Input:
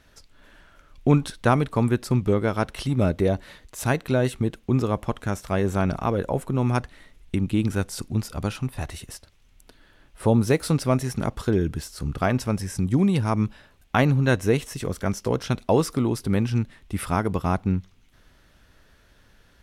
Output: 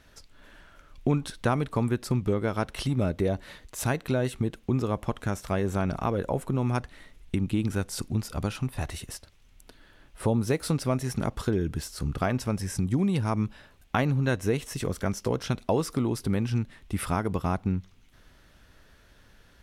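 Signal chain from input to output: compression 2:1, threshold -25 dBFS, peak gain reduction 8 dB

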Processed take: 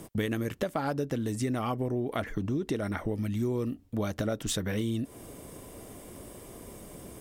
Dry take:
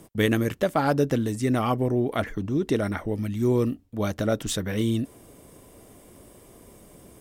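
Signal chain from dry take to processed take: compression, threshold -32 dBFS, peak gain reduction 14.5 dB; trim +4 dB

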